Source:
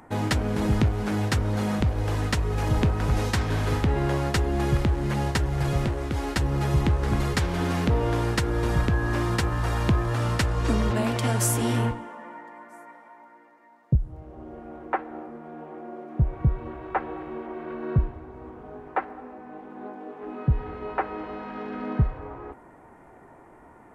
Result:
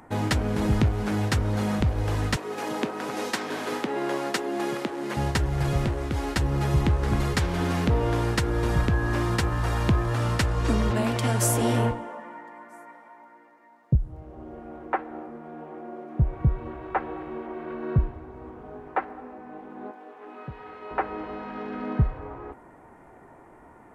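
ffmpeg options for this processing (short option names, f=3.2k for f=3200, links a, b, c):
-filter_complex "[0:a]asettb=1/sr,asplit=3[a][b][c];[a]atrim=end=2.364[d];[b]atrim=start=2.36:end=5.17,asetpts=PTS-STARTPTS,afade=t=in:d=0.004:c=qsin,afade=t=out:st=2.806:d=0.004:c=qsin,highpass=f=240:w=0.5412,highpass=f=240:w=1.3066[e];[c]atrim=start=5.166[f];[d][e]acrossfade=d=0.004:c1=hsin:c2=qsin[g];[g][f]acrossfade=d=0.004:c1=qsin:c2=hsin,asettb=1/sr,asplit=3[h][i][j];[h]atrim=end=11.424[k];[i]atrim=start=11.42:end=12.2,asetpts=PTS-STARTPTS,afade=t=in:d=0.004:c=qsin,afade=t=out:st=0.776:d=0.004:c=qsin,equalizer=f=580:w=1.7:g=7[l];[j]atrim=start=12.196[m];[k][l]acrossfade=d=0.004:c1=hsin:c2=qsin[n];[n][m]acrossfade=d=0.004:c1=qsin:c2=hsin,asettb=1/sr,asplit=3[o][p][q];[o]atrim=end=19.914[r];[p]atrim=start=19.91:end=20.91,asetpts=PTS-STARTPTS,afade=t=in:d=0.004:c=qsin,afade=t=out:st=0.996:d=0.004:c=qsin,highpass=f=850:p=1[s];[q]atrim=start=20.906[t];[r][s]acrossfade=d=0.004:c1=hsin:c2=qsin[u];[u][t]acrossfade=d=0.004:c1=qsin:c2=hsin"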